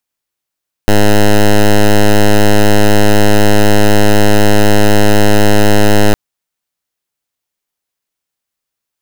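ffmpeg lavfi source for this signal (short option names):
-f lavfi -i "aevalsrc='0.531*(2*lt(mod(104*t,1),0.09)-1)':d=5.26:s=44100"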